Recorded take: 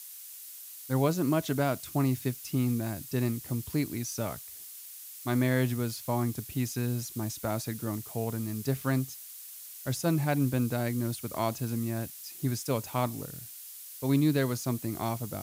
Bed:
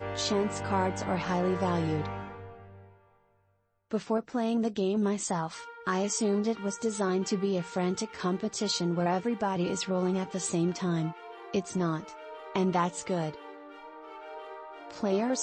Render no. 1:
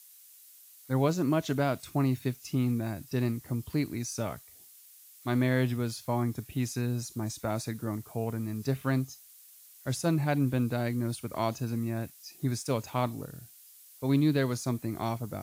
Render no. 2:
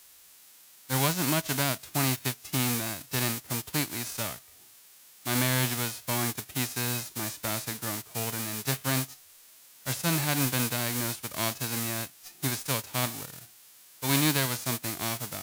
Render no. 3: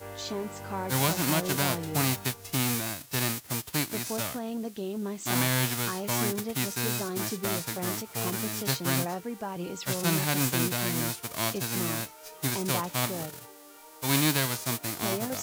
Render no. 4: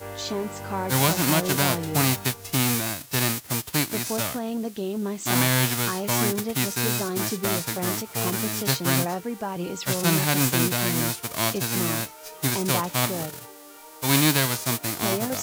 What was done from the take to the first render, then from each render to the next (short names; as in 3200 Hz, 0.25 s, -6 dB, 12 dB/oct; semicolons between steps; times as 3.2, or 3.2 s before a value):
noise print and reduce 9 dB
spectral whitening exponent 0.3
add bed -6 dB
gain +5 dB